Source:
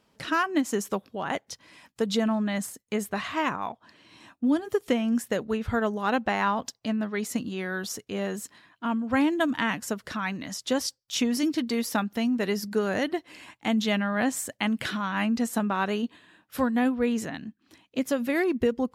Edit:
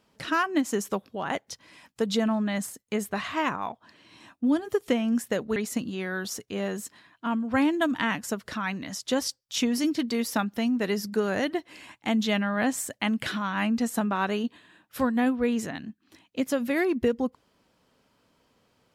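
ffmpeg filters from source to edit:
-filter_complex "[0:a]asplit=2[a][b];[a]atrim=end=5.562[c];[b]atrim=start=7.148[d];[c][d]acrossfade=d=0.004:c1=hsin:c2=hsin"

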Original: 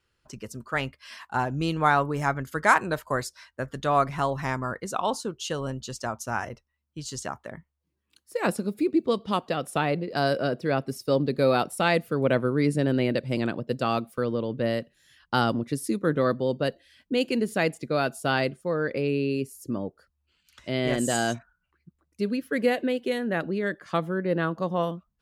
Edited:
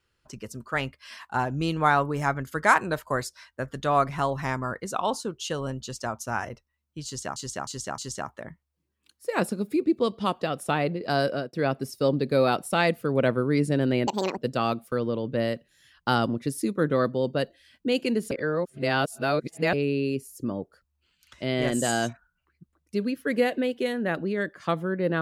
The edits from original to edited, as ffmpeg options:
-filter_complex "[0:a]asplit=9[a][b][c][d][e][f][g][h][i];[a]atrim=end=7.362[j];[b]atrim=start=7.048:end=7.362[k];[c]atrim=start=7.048:end=7.362[l];[d]atrim=start=7.048:end=10.6,asetpts=PTS-STARTPTS,afade=t=out:st=3.252:d=0.3:c=qsin[m];[e]atrim=start=10.6:end=13.144,asetpts=PTS-STARTPTS,afade=t=in:d=0.004:c=hsin[n];[f]atrim=start=13.14:end=13.63,asetpts=PTS-STARTPTS,asetrate=71442,aresample=44100[o];[g]atrim=start=13.626:end=17.572[p];[h]atrim=start=17.568:end=18.992,asetpts=PTS-STARTPTS,areverse[q];[i]atrim=start=18.988[r];[j][k]acrossfade=d=0.004:c1=hsin:c2=hsin[s];[s][l]acrossfade=d=0.004:c1=hsin:c2=hsin[t];[m][n]concat=n=2:v=0:a=1[u];[t][u]acrossfade=d=0.004:c1=hsin:c2=hsin[v];[v][o]acrossfade=d=0.004:c1=hsin:c2=hsin[w];[w][p]acrossfade=d=0.004:c1=hsin:c2=hsin[x];[x][q]acrossfade=d=0.004:c1=hsin:c2=hsin[y];[y][r]acrossfade=d=0.004:c1=hsin:c2=hsin"

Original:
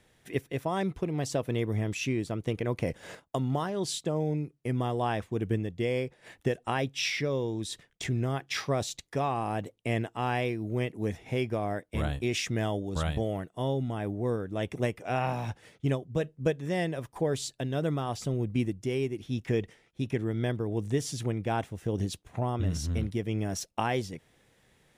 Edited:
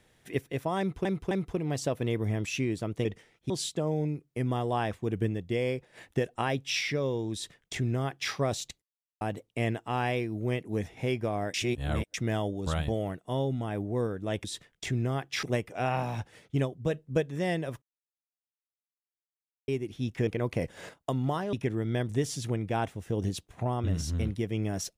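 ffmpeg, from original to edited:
-filter_complex "[0:a]asplit=16[a][b][c][d][e][f][g][h][i][j][k][l][m][n][o][p];[a]atrim=end=1.052[q];[b]atrim=start=0.788:end=1.052[r];[c]atrim=start=0.788:end=2.532[s];[d]atrim=start=19.568:end=20.022[t];[e]atrim=start=3.788:end=9.11,asetpts=PTS-STARTPTS,afade=t=out:st=5.318:d=0.004:c=hsin[u];[f]atrim=start=9.11:end=9.5,asetpts=PTS-STARTPTS,volume=0[v];[g]atrim=start=9.5:end=11.832,asetpts=PTS-STARTPTS,afade=t=in:d=0.004:c=hsin[w];[h]atrim=start=11.828:end=12.432,asetpts=PTS-STARTPTS,areverse[x];[i]atrim=start=12.428:end=14.732[y];[j]atrim=start=7.618:end=8.612[z];[k]atrim=start=14.728:end=17.12,asetpts=PTS-STARTPTS,afade=t=out:st=2.388:d=0.004:c=hsin[aa];[l]atrim=start=17.12:end=18.98,asetpts=PTS-STARTPTS,volume=0[ab];[m]atrim=start=18.98:end=19.572,asetpts=PTS-STARTPTS,afade=t=in:d=0.004:c=hsin[ac];[n]atrim=start=2.528:end=3.792[ad];[o]atrim=start=20.018:end=20.582[ae];[p]atrim=start=20.848[af];[q][r]acrossfade=d=0.004:c1=hsin:c2=hsin[ag];[ag][s]acrossfade=d=0.004:c1=hsin:c2=hsin[ah];[ah][t]acrossfade=d=0.004:c1=hsin:c2=hsin[ai];[u][v][w]concat=n=3:v=0:a=1[aj];[ai][aj]acrossfade=d=0.004:c1=hsin:c2=hsin[ak];[ak][x]acrossfade=d=0.004:c1=hsin:c2=hsin[al];[al][y]acrossfade=d=0.004:c1=hsin:c2=hsin[am];[am][z]acrossfade=d=0.004:c1=hsin:c2=hsin[an];[aa][ab][ac]concat=n=3:v=0:a=1[ao];[an][ao]acrossfade=d=0.004:c1=hsin:c2=hsin[ap];[ap][ad]acrossfade=d=0.004:c1=hsin:c2=hsin[aq];[aq][ae]acrossfade=d=0.004:c1=hsin:c2=hsin[ar];[ar][af]acrossfade=d=0.004:c1=hsin:c2=hsin"

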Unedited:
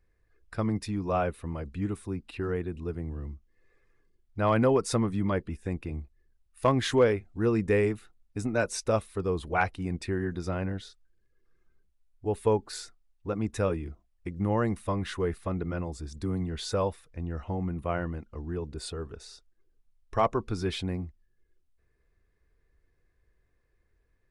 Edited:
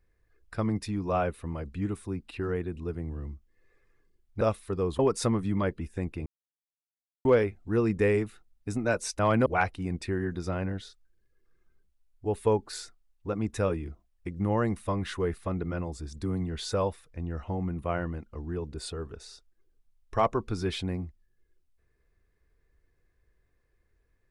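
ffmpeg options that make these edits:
-filter_complex "[0:a]asplit=7[a][b][c][d][e][f][g];[a]atrim=end=4.412[h];[b]atrim=start=8.878:end=9.462[i];[c]atrim=start=4.678:end=5.95,asetpts=PTS-STARTPTS,afade=t=out:st=1.268:d=0.004:c=hsin[j];[d]atrim=start=5.95:end=6.94,asetpts=PTS-STARTPTS,volume=0[k];[e]atrim=start=6.94:end=8.882,asetpts=PTS-STARTPTS,afade=t=in:d=0.004:c=hsin[l];[f]atrim=start=4.408:end=4.682[m];[g]atrim=start=9.458[n];[h][i]acrossfade=d=0.004:c1=hsin:c2=hsin[o];[j][k][l]concat=n=3:v=0:a=1[p];[o][p]acrossfade=d=0.004:c1=hsin:c2=hsin[q];[q][m]acrossfade=d=0.004:c1=hsin:c2=hsin[r];[r][n]acrossfade=d=0.004:c1=hsin:c2=hsin"

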